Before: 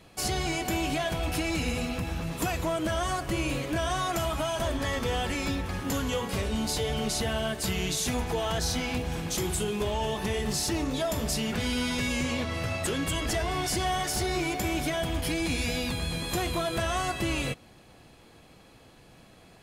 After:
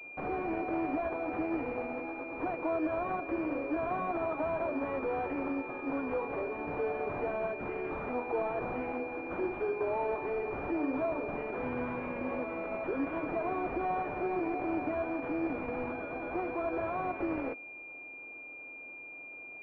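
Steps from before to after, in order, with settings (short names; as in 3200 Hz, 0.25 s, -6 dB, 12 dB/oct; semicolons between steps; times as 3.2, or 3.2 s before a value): steep high-pass 260 Hz 96 dB/oct; limiter -22.5 dBFS, peak gain reduction 4.5 dB; pulse-width modulation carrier 2400 Hz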